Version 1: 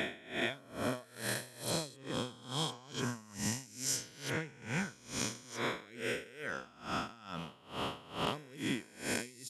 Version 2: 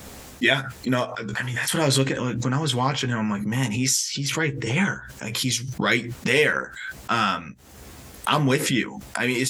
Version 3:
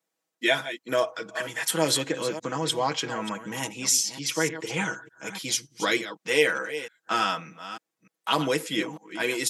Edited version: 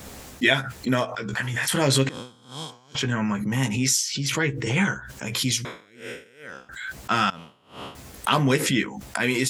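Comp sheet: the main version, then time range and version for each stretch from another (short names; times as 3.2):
2
2.09–2.95 from 1
5.65–6.69 from 1
7.3–7.95 from 1
not used: 3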